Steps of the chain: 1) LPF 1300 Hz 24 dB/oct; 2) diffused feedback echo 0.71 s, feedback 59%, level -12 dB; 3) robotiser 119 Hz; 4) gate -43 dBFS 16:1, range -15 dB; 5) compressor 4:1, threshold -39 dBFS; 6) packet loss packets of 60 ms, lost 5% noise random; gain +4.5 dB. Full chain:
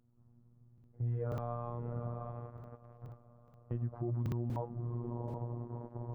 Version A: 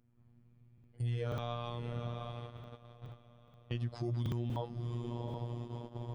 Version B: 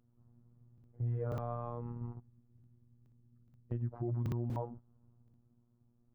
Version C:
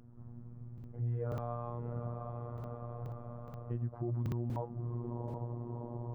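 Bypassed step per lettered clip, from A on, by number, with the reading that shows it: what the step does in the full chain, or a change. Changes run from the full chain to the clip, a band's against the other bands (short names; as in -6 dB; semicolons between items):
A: 1, crest factor change +2.5 dB; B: 2, momentary loudness spread change -6 LU; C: 4, momentary loudness spread change -4 LU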